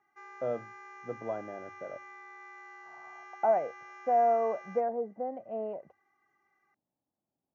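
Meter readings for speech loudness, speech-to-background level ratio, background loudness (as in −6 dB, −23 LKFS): −32.0 LKFS, 16.5 dB, −48.5 LKFS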